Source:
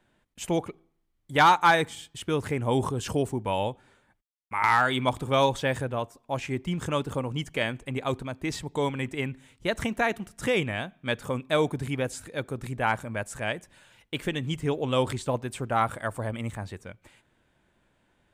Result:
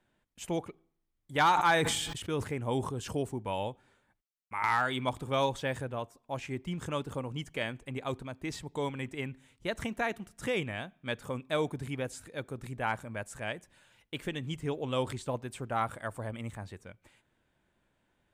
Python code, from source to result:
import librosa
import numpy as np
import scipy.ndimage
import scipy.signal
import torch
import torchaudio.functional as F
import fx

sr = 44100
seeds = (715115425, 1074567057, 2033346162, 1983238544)

y = fx.sustainer(x, sr, db_per_s=36.0, at=(1.53, 2.42), fade=0.02)
y = y * librosa.db_to_amplitude(-6.5)